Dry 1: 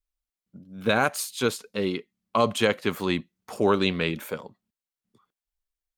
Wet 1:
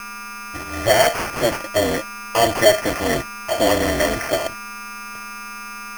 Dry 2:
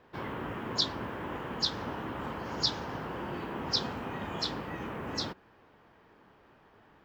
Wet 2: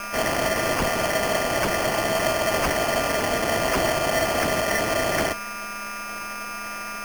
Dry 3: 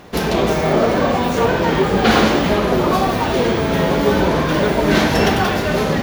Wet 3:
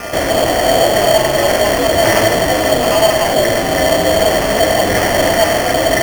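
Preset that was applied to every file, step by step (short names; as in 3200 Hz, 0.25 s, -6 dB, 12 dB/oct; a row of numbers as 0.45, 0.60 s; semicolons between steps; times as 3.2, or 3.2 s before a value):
HPF 99 Hz 12 dB/oct; whine 1300 Hz -39 dBFS; ring modulator 110 Hz; in parallel at -4 dB: fuzz box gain 39 dB, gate -46 dBFS; on the sum: small resonant body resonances 650/1800 Hz, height 17 dB, ringing for 45 ms; sample-rate reducer 3800 Hz, jitter 0%; gain -5 dB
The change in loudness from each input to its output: +7.0, +11.0, +3.5 LU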